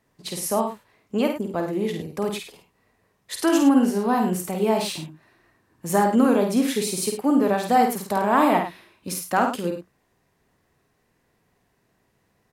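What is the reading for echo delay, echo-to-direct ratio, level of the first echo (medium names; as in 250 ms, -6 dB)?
50 ms, -3.5 dB, -5.0 dB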